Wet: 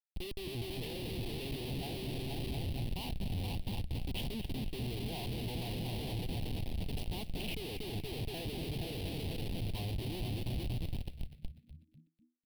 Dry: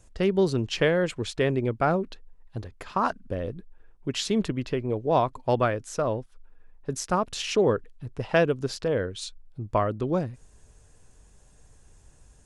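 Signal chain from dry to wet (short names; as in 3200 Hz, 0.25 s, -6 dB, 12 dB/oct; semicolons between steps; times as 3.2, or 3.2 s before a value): fixed phaser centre 890 Hz, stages 8; repeats that get brighter 0.236 s, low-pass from 400 Hz, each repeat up 2 oct, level -3 dB; Schmitt trigger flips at -33 dBFS; EQ curve 180 Hz 0 dB, 430 Hz -11 dB, 790 Hz -8 dB, 1300 Hz -30 dB, 2800 Hz 0 dB, 4500 Hz -1 dB, 6900 Hz -20 dB, 9900 Hz -4 dB; frequency-shifting echo 0.247 s, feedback 37%, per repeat -82 Hz, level -13 dB; gain -4.5 dB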